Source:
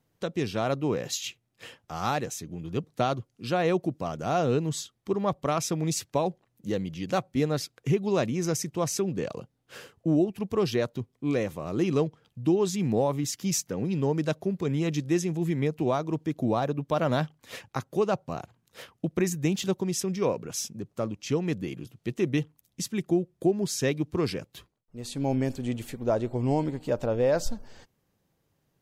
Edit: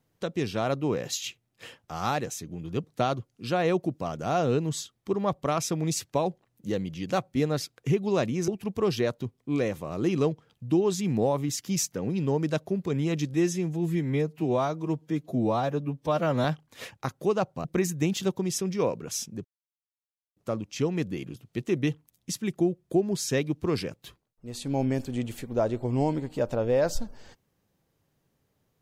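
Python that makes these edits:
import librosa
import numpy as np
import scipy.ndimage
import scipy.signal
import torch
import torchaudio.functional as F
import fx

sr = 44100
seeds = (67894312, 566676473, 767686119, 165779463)

y = fx.edit(x, sr, fx.cut(start_s=8.48, length_s=1.75),
    fx.stretch_span(start_s=15.09, length_s=2.07, factor=1.5),
    fx.cut(start_s=18.36, length_s=0.71),
    fx.insert_silence(at_s=20.87, length_s=0.92), tone=tone)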